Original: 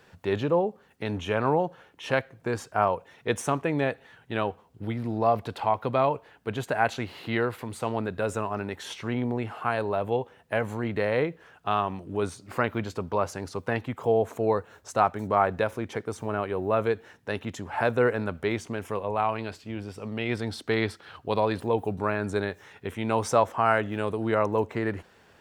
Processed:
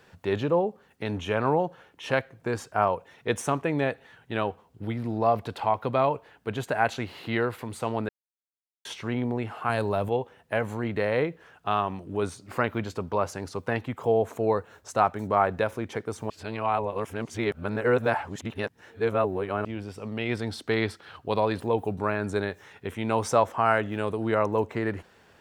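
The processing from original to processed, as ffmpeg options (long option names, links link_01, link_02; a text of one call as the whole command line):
ffmpeg -i in.wav -filter_complex "[0:a]asettb=1/sr,asplit=3[link_01][link_02][link_03];[link_01]atrim=end=9.694[link_04];[link_02]atrim=start=9.69:end=10.09,asetpts=PTS-STARTPTS,afade=type=in:duration=0.004:curve=qsin,afade=type=out:start_time=0.396:duration=0.004:curve=qsin,bass=frequency=250:gain=6,treble=frequency=4000:gain=9[link_05];[link_03]atrim=start=10.086[link_06];[link_04][link_05]acrossfade=duration=0.004:curve1=hsin:curve2=qsin[link_07];[link_07][link_06]acrossfade=duration=0.004:curve1=qsin:curve2=hsin,asplit=5[link_08][link_09][link_10][link_11][link_12];[link_08]atrim=end=8.09,asetpts=PTS-STARTPTS,afade=type=out:start_time=8.086:duration=0.004:curve=hsin[link_13];[link_09]atrim=start=8.09:end=8.85,asetpts=PTS-STARTPTS,volume=0[link_14];[link_10]atrim=start=8.85:end=16.302,asetpts=PTS-STARTPTS,afade=type=in:duration=0.004:curve=hsin[link_15];[link_11]atrim=start=16.298:end=19.652,asetpts=PTS-STARTPTS,areverse[link_16];[link_12]atrim=start=19.648[link_17];[link_13][link_14][link_15]concat=n=3:v=0:a=1[link_18];[link_18][link_16]acrossfade=duration=0.004:curve1=hsin:curve2=hsin[link_19];[link_19][link_17]acrossfade=duration=0.004:curve1=hsin:curve2=hsin" out.wav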